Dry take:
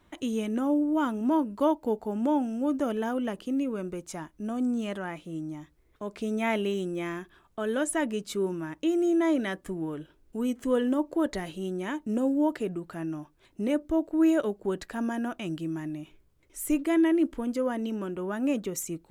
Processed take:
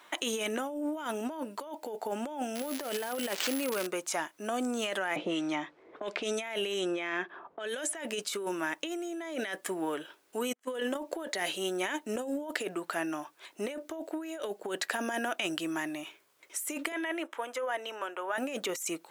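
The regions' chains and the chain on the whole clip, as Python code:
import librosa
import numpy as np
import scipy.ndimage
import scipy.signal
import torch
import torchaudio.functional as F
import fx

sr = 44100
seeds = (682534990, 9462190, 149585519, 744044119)

y = fx.chain(x, sr, fx.crossing_spikes(level_db=-36.0),
    fx.resample_bad(factor=4, down='none', up='hold'), at=(2.55, 3.87))
y = fx.chain(y, sr, fx.env_lowpass(base_hz=440.0, full_db=-24.0),
    fx.band_squash(depth_pct=100), at=(5.16, 7.95))
y = fx.chain(y, sr, fx.level_steps(step_db=9),
    fx.upward_expand(threshold_db=-48.0, expansion=2.5), at=(10.53, 10.98))
y = fx.chain(y, sr, fx.highpass(hz=660.0, slope=12),
    fx.high_shelf(hz=3300.0, db=-11.0),
    fx.notch(hz=4600.0, q=5.1), at=(16.92, 18.38))
y = scipy.signal.sosfilt(scipy.signal.butter(2, 730.0, 'highpass', fs=sr, output='sos'), y)
y = fx.dynamic_eq(y, sr, hz=1100.0, q=1.9, threshold_db=-51.0, ratio=4.0, max_db=-8)
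y = fx.over_compress(y, sr, threshold_db=-43.0, ratio=-1.0)
y = y * 10.0 ** (9.0 / 20.0)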